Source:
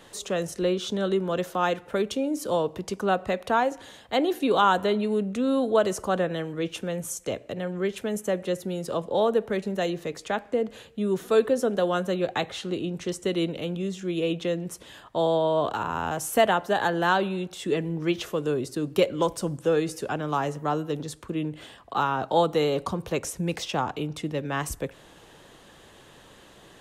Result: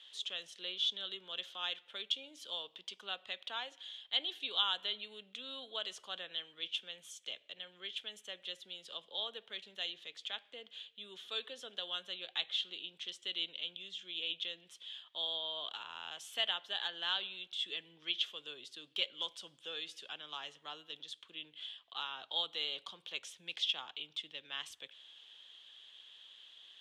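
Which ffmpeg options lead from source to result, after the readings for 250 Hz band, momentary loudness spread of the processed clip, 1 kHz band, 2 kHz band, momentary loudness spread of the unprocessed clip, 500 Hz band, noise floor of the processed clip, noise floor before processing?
-33.0 dB, 13 LU, -21.5 dB, -12.0 dB, 9 LU, -27.5 dB, -68 dBFS, -52 dBFS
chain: -af "bandpass=f=3.3k:t=q:w=7.9:csg=0,volume=6.5dB"

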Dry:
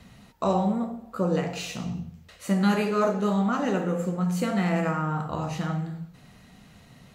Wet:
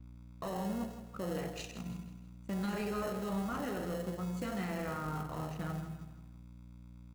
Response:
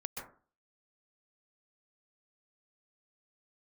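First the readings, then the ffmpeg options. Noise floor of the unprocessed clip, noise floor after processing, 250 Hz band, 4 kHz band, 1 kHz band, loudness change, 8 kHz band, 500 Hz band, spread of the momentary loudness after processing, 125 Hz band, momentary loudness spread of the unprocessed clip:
-53 dBFS, -53 dBFS, -12.5 dB, -10.5 dB, -12.5 dB, -12.0 dB, -9.0 dB, -12.0 dB, 17 LU, -11.5 dB, 11 LU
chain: -filter_complex "[0:a]anlmdn=10,highpass=72,lowshelf=f=210:g=-8,aeval=exprs='val(0)+0.00708*(sin(2*PI*60*n/s)+sin(2*PI*2*60*n/s)/2+sin(2*PI*3*60*n/s)/3+sin(2*PI*4*60*n/s)/4+sin(2*PI*5*60*n/s)/5)':c=same,asplit=2[a][b];[b]acrusher=samples=37:mix=1:aa=0.000001,volume=-7.5dB[c];[a][c]amix=inputs=2:normalize=0,alimiter=limit=-21dB:level=0:latency=1:release=13,aeval=exprs='sgn(val(0))*max(abs(val(0))-0.0015,0)':c=same,aecho=1:1:161|322|483|644:0.299|0.125|0.0527|0.0221,adynamicequalizer=threshold=0.00158:dfrequency=6100:dqfactor=0.7:tfrequency=6100:tqfactor=0.7:attack=5:release=100:ratio=0.375:range=3:mode=boostabove:tftype=highshelf,volume=-8.5dB"

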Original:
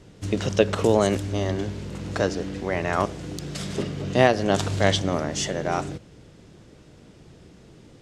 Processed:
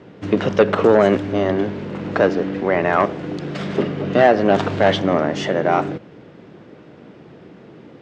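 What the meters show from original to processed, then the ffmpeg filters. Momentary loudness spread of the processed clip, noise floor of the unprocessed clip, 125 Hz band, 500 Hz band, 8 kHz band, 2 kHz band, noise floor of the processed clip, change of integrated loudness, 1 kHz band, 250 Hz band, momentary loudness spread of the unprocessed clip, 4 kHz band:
12 LU, -51 dBFS, +1.0 dB, +7.5 dB, under -10 dB, +5.5 dB, -44 dBFS, +6.0 dB, +7.5 dB, +6.5 dB, 12 LU, 0.0 dB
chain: -filter_complex "[0:a]asplit=2[a][b];[b]aeval=exprs='0.841*sin(PI/2*3.98*val(0)/0.841)':c=same,volume=-11.5dB[c];[a][c]amix=inputs=2:normalize=0,highpass=190,lowpass=2.2k,volume=1.5dB"

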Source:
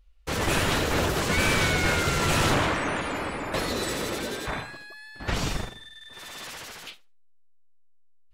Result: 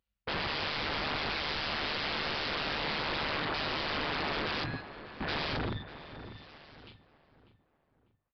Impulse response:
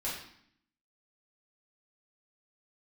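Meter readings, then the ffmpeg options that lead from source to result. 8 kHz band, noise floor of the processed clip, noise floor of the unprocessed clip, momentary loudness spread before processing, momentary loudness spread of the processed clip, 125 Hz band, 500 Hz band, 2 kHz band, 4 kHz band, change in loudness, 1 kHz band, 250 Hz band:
under -25 dB, -80 dBFS, -53 dBFS, 18 LU, 14 LU, -12.0 dB, -9.0 dB, -6.5 dB, -3.0 dB, -7.0 dB, -6.5 dB, -10.0 dB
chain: -filter_complex "[0:a]afwtdn=0.0178,highpass=f=71:w=0.5412,highpass=f=71:w=1.3066,agate=range=-15dB:threshold=-51dB:ratio=16:detection=peak,bandreject=f=50:t=h:w=6,bandreject=f=100:t=h:w=6,bandreject=f=150:t=h:w=6,areverse,acompressor=threshold=-36dB:ratio=12,areverse,aeval=exprs='0.0422*sin(PI/2*6.31*val(0)/0.0422)':c=same,tremolo=f=150:d=0.667,asplit=2[a][b];[b]adelay=19,volume=-13dB[c];[a][c]amix=inputs=2:normalize=0,asplit=2[d][e];[e]adelay=596,lowpass=f=1.7k:p=1,volume=-11.5dB,asplit=2[f][g];[g]adelay=596,lowpass=f=1.7k:p=1,volume=0.39,asplit=2[h][i];[i]adelay=596,lowpass=f=1.7k:p=1,volume=0.39,asplit=2[j][k];[k]adelay=596,lowpass=f=1.7k:p=1,volume=0.39[l];[f][h][j][l]amix=inputs=4:normalize=0[m];[d][m]amix=inputs=2:normalize=0,aresample=11025,aresample=44100"

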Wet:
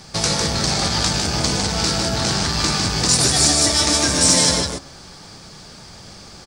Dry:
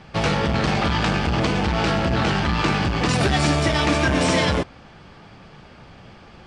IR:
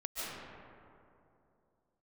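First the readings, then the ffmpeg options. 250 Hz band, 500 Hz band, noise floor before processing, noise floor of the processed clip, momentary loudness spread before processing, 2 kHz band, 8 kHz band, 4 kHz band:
-2.0 dB, -2.0 dB, -46 dBFS, -41 dBFS, 2 LU, -2.0 dB, +18.0 dB, +9.0 dB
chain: -filter_complex "[0:a]bandreject=f=69.12:t=h:w=4,bandreject=f=138.24:t=h:w=4,bandreject=f=207.36:t=h:w=4,bandreject=f=276.48:t=h:w=4,bandreject=f=345.6:t=h:w=4,bandreject=f=414.72:t=h:w=4,bandreject=f=483.84:t=h:w=4,bandreject=f=552.96:t=h:w=4,bandreject=f=622.08:t=h:w=4,bandreject=f=691.2:t=h:w=4,bandreject=f=760.32:t=h:w=4,bandreject=f=829.44:t=h:w=4,bandreject=f=898.56:t=h:w=4,bandreject=f=967.68:t=h:w=4,bandreject=f=1.0368k:t=h:w=4,bandreject=f=1.10592k:t=h:w=4,bandreject=f=1.17504k:t=h:w=4,bandreject=f=1.24416k:t=h:w=4,bandreject=f=1.31328k:t=h:w=4,bandreject=f=1.3824k:t=h:w=4,bandreject=f=1.45152k:t=h:w=4,bandreject=f=1.52064k:t=h:w=4,bandreject=f=1.58976k:t=h:w=4,bandreject=f=1.65888k:t=h:w=4,bandreject=f=1.728k:t=h:w=4,bandreject=f=1.79712k:t=h:w=4,bandreject=f=1.86624k:t=h:w=4,asplit=2[a][b];[b]acompressor=threshold=-28dB:ratio=6,volume=1.5dB[c];[a][c]amix=inputs=2:normalize=0,aecho=1:1:153:0.596,aexciter=amount=7.8:drive=6.5:freq=4.2k,volume=-5.5dB"

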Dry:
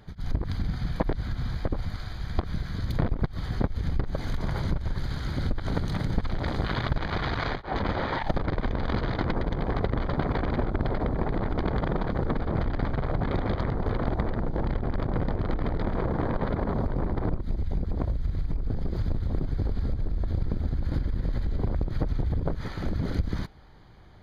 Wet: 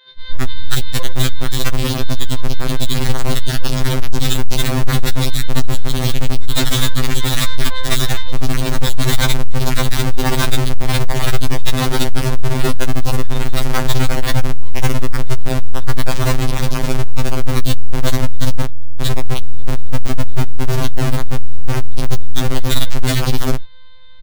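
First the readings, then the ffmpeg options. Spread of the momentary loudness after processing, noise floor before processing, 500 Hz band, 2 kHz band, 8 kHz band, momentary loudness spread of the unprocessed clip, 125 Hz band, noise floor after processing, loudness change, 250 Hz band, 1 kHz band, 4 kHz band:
6 LU, -38 dBFS, +8.0 dB, +12.5 dB, n/a, 4 LU, +9.5 dB, -18 dBFS, +9.5 dB, +7.5 dB, +8.0 dB, +21.0 dB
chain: -filter_complex "[0:a]equalizer=f=1.7k:t=o:w=2.6:g=9.5,acrossover=split=180[a][b];[a]adelay=110[c];[c][b]amix=inputs=2:normalize=0,acrusher=bits=10:mix=0:aa=0.000001,afftfilt=real='hypot(re,im)*cos(PI*b)':imag='0':win_size=1024:overlap=0.75,asubboost=boost=10:cutoff=69,lowpass=f=3.7k:t=q:w=11,asoftclip=type=hard:threshold=-13dB,afwtdn=0.1,aeval=exprs='(mod(6.68*val(0)+1,2)-1)/6.68':c=same,alimiter=level_in=23dB:limit=-1dB:release=50:level=0:latency=1,afftfilt=real='re*2.45*eq(mod(b,6),0)':imag='im*2.45*eq(mod(b,6),0)':win_size=2048:overlap=0.75,volume=-6.5dB"

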